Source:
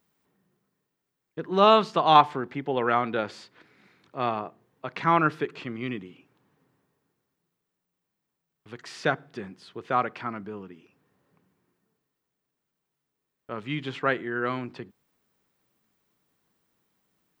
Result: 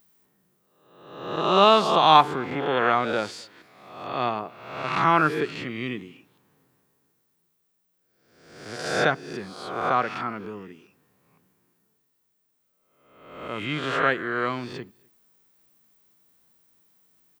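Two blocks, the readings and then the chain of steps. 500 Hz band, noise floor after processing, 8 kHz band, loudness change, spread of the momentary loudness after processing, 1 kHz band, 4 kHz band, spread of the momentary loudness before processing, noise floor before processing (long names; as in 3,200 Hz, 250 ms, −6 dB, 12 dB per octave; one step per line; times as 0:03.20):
+2.0 dB, −72 dBFS, can't be measured, +2.0 dB, 20 LU, +2.5 dB, +5.5 dB, 22 LU, −83 dBFS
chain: peak hold with a rise ahead of every peak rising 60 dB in 0.94 s
high-shelf EQ 6,100 Hz +11 dB
slap from a distant wall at 43 metres, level −28 dB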